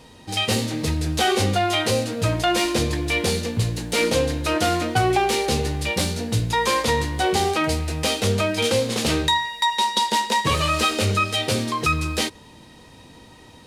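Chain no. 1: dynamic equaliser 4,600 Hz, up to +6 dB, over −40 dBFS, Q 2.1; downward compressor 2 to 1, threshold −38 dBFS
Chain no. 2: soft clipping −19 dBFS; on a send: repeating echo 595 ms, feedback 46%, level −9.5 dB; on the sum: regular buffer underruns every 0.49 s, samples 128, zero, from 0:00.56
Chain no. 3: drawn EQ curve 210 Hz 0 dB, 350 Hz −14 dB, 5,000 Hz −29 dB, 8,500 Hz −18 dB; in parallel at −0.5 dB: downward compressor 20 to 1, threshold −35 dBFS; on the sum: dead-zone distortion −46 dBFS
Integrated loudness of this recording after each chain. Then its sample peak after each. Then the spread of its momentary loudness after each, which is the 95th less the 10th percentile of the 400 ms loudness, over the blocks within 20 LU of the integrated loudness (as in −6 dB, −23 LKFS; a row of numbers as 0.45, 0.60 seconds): −31.5, −24.0, −28.0 LKFS; −17.0, −15.5, −11.5 dBFS; 4, 4, 8 LU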